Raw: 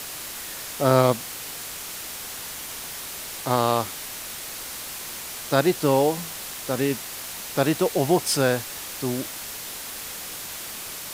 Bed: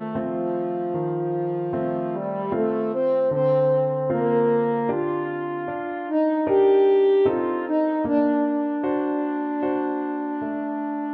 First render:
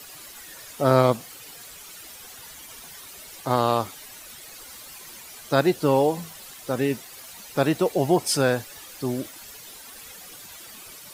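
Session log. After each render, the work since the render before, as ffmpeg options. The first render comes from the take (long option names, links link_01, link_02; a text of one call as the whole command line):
ffmpeg -i in.wav -af "afftdn=noise_reduction=12:noise_floor=-36" out.wav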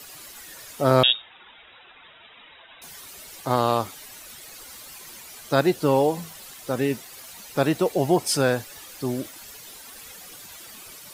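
ffmpeg -i in.wav -filter_complex "[0:a]asettb=1/sr,asplit=3[link_01][link_02][link_03];[link_01]atrim=end=1.034[link_04];[link_02]atrim=start=1.03:end=2.82,asetpts=PTS-STARTPTS,afade=type=in:duration=0.004:curve=qsin,afade=type=out:start_time=1.786:duration=0.004:curve=qsin,lowpass=frequency=3300:width_type=q:width=0.5098,lowpass=frequency=3300:width_type=q:width=0.6013,lowpass=frequency=3300:width_type=q:width=0.9,lowpass=frequency=3300:width_type=q:width=2.563,afreqshift=-3900[link_05];[link_03]atrim=start=2.816[link_06];[link_04][link_05]acrossfade=duration=0.004:curve1=hsin:curve2=qsin[link_07];[link_07][link_06]acrossfade=duration=0.004:curve1=qsin:curve2=hsin" out.wav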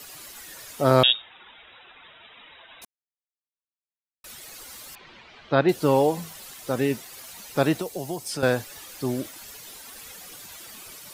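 ffmpeg -i in.wav -filter_complex "[0:a]asettb=1/sr,asplit=3[link_01][link_02][link_03];[link_01]atrim=end=4.954[link_04];[link_02]atrim=start=4.95:end=5.69,asetpts=PTS-STARTPTS,afade=type=in:duration=0.004:curve=qsin,afade=type=out:start_time=0.736:duration=0.004:curve=qsin,lowpass=frequency=3600:width=0.5412,lowpass=frequency=3600:width=1.3066[link_05];[link_03]atrim=start=5.686[link_06];[link_04][link_05]acrossfade=duration=0.004:curve1=hsin:curve2=qsin[link_07];[link_07][link_06]acrossfade=duration=0.004:curve1=qsin:curve2=hsin,asettb=1/sr,asplit=3[link_08][link_09][link_10];[link_08]atrim=end=7.774[link_11];[link_09]atrim=start=7.77:end=8.43,asetpts=PTS-STARTPTS,afade=type=in:duration=0.004:curve=qsin,afade=type=out:start_time=0.656:duration=0.004:curve=qsin,acrossover=split=140|4400[link_12][link_13][link_14];[link_12]acompressor=threshold=-45dB:ratio=4[link_15];[link_13]acompressor=threshold=-31dB:ratio=4[link_16];[link_14]acompressor=threshold=-35dB:ratio=4[link_17];[link_15][link_16][link_17]amix=inputs=3:normalize=0[link_18];[link_10]atrim=start=8.426[link_19];[link_11][link_18]acrossfade=duration=0.004:curve1=hsin:curve2=qsin[link_20];[link_20][link_19]acrossfade=duration=0.004:curve1=qsin:curve2=hsin,asplit=3[link_21][link_22][link_23];[link_21]atrim=end=2.85,asetpts=PTS-STARTPTS,afade=type=out:start_time=2.846:duration=0.004:curve=hsin[link_24];[link_22]atrim=start=2.85:end=4.24,asetpts=PTS-STARTPTS,volume=0[link_25];[link_23]atrim=start=4.24,asetpts=PTS-STARTPTS,afade=type=in:duration=0.004:curve=hsin[link_26];[link_24][link_25][link_26]concat=n=3:v=0:a=1" out.wav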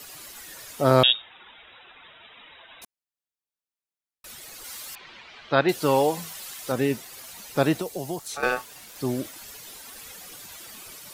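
ffmpeg -i in.wav -filter_complex "[0:a]asettb=1/sr,asplit=3[link_01][link_02][link_03];[link_01]atrim=end=4.644[link_04];[link_02]atrim=start=4.64:end=6.72,asetpts=PTS-STARTPTS,afade=type=in:duration=0.004:curve=qsin,afade=type=out:start_time=2.076:duration=0.004:curve=qsin,tiltshelf=frequency=690:gain=-4[link_05];[link_03]atrim=start=6.716[link_06];[link_04][link_05]acrossfade=duration=0.004:curve1=hsin:curve2=qsin[link_07];[link_07][link_06]acrossfade=duration=0.004:curve1=qsin:curve2=hsin,asettb=1/sr,asplit=3[link_08][link_09][link_10];[link_08]atrim=end=8.194[link_11];[link_09]atrim=start=8.19:end=8.96,asetpts=PTS-STARTPTS,afade=type=in:duration=0.004:curve=qsin,afade=type=out:start_time=0.766:duration=0.004:curve=qsin,aeval=exprs='val(0)*sin(2*PI*1000*n/s)':channel_layout=same[link_12];[link_10]atrim=start=8.956[link_13];[link_11][link_12]acrossfade=duration=0.004:curve1=hsin:curve2=qsin[link_14];[link_14][link_13]acrossfade=duration=0.004:curve1=qsin:curve2=hsin" out.wav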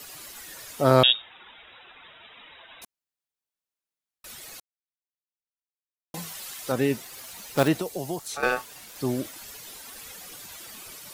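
ffmpeg -i in.wav -filter_complex "[0:a]asettb=1/sr,asplit=3[link_01][link_02][link_03];[link_01]atrim=end=7.004[link_04];[link_02]atrim=start=7:end=7.68,asetpts=PTS-STARTPTS,afade=type=in:duration=0.004:curve=qsin,afade=type=out:start_time=0.676:duration=0.004:curve=qsin,acrusher=bits=3:mode=log:mix=0:aa=0.000001[link_05];[link_03]atrim=start=7.676[link_06];[link_04][link_05]acrossfade=duration=0.004:curve1=hsin:curve2=qsin[link_07];[link_07][link_06]acrossfade=duration=0.004:curve1=qsin:curve2=hsin,asplit=3[link_08][link_09][link_10];[link_08]atrim=end=4.6,asetpts=PTS-STARTPTS,afade=type=out:start_time=4.596:duration=0.004:curve=hsin[link_11];[link_09]atrim=start=4.6:end=6.14,asetpts=PTS-STARTPTS,volume=0[link_12];[link_10]atrim=start=6.14,asetpts=PTS-STARTPTS,afade=type=in:duration=0.004:curve=hsin[link_13];[link_11][link_12][link_13]concat=n=3:v=0:a=1" out.wav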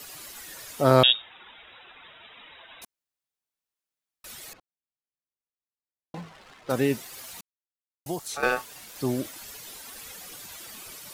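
ffmpeg -i in.wav -filter_complex "[0:a]asettb=1/sr,asplit=3[link_01][link_02][link_03];[link_01]atrim=end=4.534[link_04];[link_02]atrim=start=4.53:end=6.7,asetpts=PTS-STARTPTS,afade=type=in:duration=0.004:curve=qsin,afade=type=out:start_time=2.166:duration=0.004:curve=qsin,adynamicsmooth=sensitivity=7.5:basefreq=1000[link_05];[link_03]atrim=start=6.696[link_06];[link_04][link_05]acrossfade=duration=0.004:curve1=hsin:curve2=qsin[link_07];[link_07][link_06]acrossfade=duration=0.004:curve1=qsin:curve2=hsin,asplit=3[link_08][link_09][link_10];[link_08]atrim=end=7.41,asetpts=PTS-STARTPTS,afade=type=out:start_time=7.406:duration=0.004:curve=hsin[link_11];[link_09]atrim=start=7.41:end=8.06,asetpts=PTS-STARTPTS,volume=0[link_12];[link_10]atrim=start=8.06,asetpts=PTS-STARTPTS,afade=type=in:duration=0.004:curve=hsin[link_13];[link_11][link_12][link_13]concat=n=3:v=0:a=1" out.wav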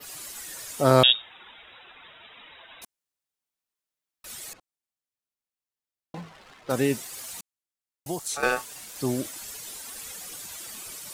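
ffmpeg -i in.wav -af "adynamicequalizer=threshold=0.00282:dfrequency=8200:dqfactor=1.1:tfrequency=8200:tqfactor=1.1:attack=5:release=100:ratio=0.375:range=3.5:mode=boostabove:tftype=bell" out.wav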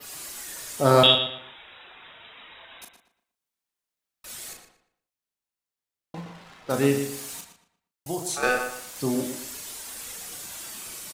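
ffmpeg -i in.wav -filter_complex "[0:a]asplit=2[link_01][link_02];[link_02]adelay=36,volume=-6dB[link_03];[link_01][link_03]amix=inputs=2:normalize=0,asplit=2[link_04][link_05];[link_05]adelay=117,lowpass=frequency=4000:poles=1,volume=-7.5dB,asplit=2[link_06][link_07];[link_07]adelay=117,lowpass=frequency=4000:poles=1,volume=0.33,asplit=2[link_08][link_09];[link_09]adelay=117,lowpass=frequency=4000:poles=1,volume=0.33,asplit=2[link_10][link_11];[link_11]adelay=117,lowpass=frequency=4000:poles=1,volume=0.33[link_12];[link_04][link_06][link_08][link_10][link_12]amix=inputs=5:normalize=0" out.wav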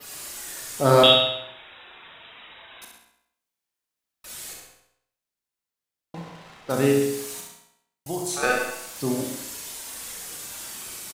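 ffmpeg -i in.wav -af "aecho=1:1:67|134|201|268|335|402:0.531|0.244|0.112|0.0517|0.0238|0.0109" out.wav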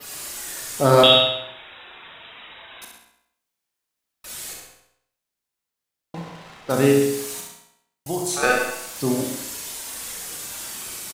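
ffmpeg -i in.wav -af "volume=3.5dB,alimiter=limit=-3dB:level=0:latency=1" out.wav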